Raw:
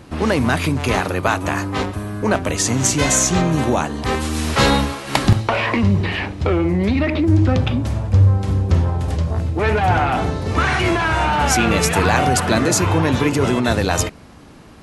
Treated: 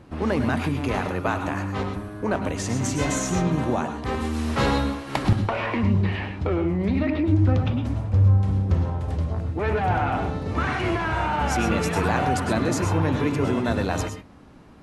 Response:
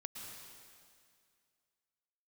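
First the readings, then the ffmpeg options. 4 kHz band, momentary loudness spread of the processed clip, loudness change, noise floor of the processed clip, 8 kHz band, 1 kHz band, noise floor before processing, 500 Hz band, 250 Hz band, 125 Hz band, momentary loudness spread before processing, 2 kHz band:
-11.0 dB, 6 LU, -6.0 dB, -39 dBFS, -13.5 dB, -6.5 dB, -41 dBFS, -6.0 dB, -5.0 dB, -5.0 dB, 6 LU, -8.5 dB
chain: -filter_complex "[0:a]highshelf=f=2.8k:g=-9.5[a];[1:a]atrim=start_sample=2205,atrim=end_sample=6615,asetrate=48510,aresample=44100[b];[a][b]afir=irnorm=-1:irlink=0"

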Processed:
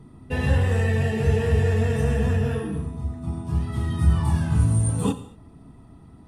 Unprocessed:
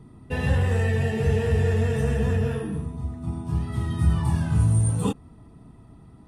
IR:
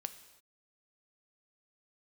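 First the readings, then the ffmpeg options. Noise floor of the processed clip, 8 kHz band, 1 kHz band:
-49 dBFS, +1.5 dB, +1.5 dB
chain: -filter_complex "[1:a]atrim=start_sample=2205,asetrate=61740,aresample=44100[a];[0:a][a]afir=irnorm=-1:irlink=0,volume=6.5dB"

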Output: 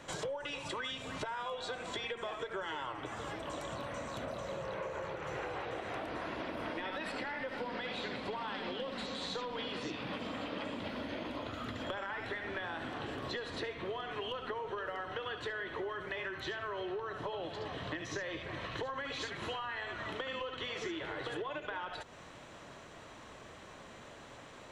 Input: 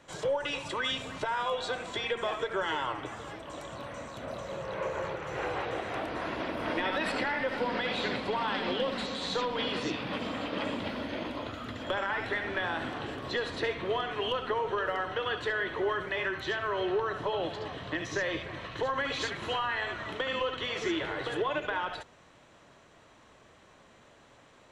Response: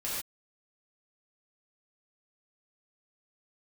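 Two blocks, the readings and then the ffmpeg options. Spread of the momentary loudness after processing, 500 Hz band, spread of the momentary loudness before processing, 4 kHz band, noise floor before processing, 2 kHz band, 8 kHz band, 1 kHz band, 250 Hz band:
7 LU, -7.5 dB, 7 LU, -6.5 dB, -58 dBFS, -7.0 dB, -3.5 dB, -7.0 dB, -6.0 dB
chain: -af "acompressor=threshold=-44dB:ratio=6,volume=6dB"

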